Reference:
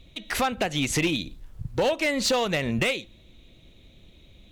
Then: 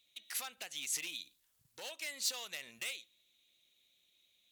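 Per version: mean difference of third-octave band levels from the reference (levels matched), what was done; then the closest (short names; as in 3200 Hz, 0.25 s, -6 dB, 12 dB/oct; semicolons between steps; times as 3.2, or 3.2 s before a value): 10.0 dB: differentiator; gain -6 dB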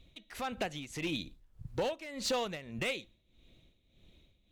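3.5 dB: tremolo 1.7 Hz, depth 77%; gain -8.5 dB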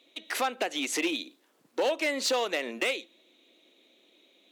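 4.5 dB: steep high-pass 280 Hz 36 dB/oct; gain -3.5 dB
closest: second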